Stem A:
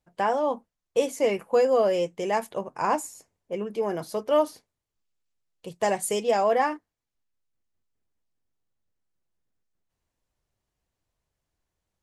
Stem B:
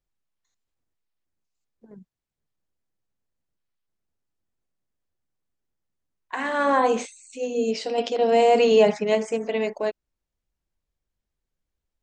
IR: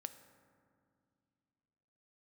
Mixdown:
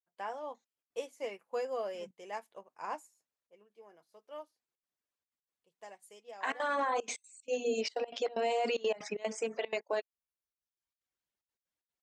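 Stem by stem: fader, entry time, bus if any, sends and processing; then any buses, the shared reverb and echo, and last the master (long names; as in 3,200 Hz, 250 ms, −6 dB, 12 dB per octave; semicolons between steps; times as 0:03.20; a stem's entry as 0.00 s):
0:03.06 −9.5 dB → 0:03.49 −20 dB, 0.00 s, no send, expander for the loud parts 1.5 to 1, over −42 dBFS
+0.5 dB, 0.10 s, no send, reverb reduction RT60 0.93 s; gate pattern ".xx.xxxxx.x" 187 BPM −24 dB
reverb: not used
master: high-pass filter 730 Hz 6 dB per octave; high-shelf EQ 6,700 Hz −4.5 dB; brickwall limiter −23.5 dBFS, peak gain reduction 11 dB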